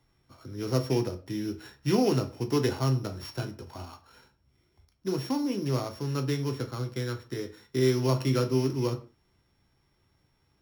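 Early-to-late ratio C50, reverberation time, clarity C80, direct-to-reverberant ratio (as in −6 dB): 14.5 dB, non-exponential decay, 19.5 dB, 6.0 dB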